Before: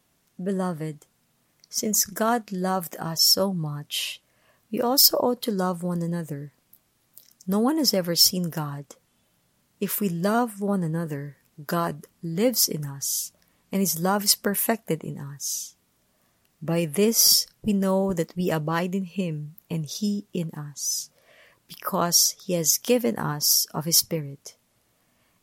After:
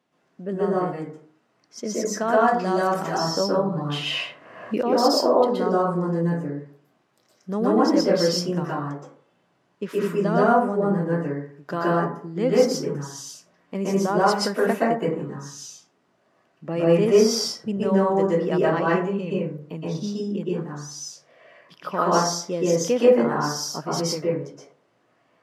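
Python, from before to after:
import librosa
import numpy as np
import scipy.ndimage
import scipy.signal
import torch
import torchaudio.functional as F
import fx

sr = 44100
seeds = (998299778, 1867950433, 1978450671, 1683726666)

y = scipy.signal.sosfilt(scipy.signal.butter(2, 220.0, 'highpass', fs=sr, output='sos'), x)
y = fx.spacing_loss(y, sr, db_at_10k=23)
y = fx.rev_plate(y, sr, seeds[0], rt60_s=0.5, hf_ratio=0.4, predelay_ms=110, drr_db=-7.0)
y = fx.band_squash(y, sr, depth_pct=70, at=(2.48, 4.83))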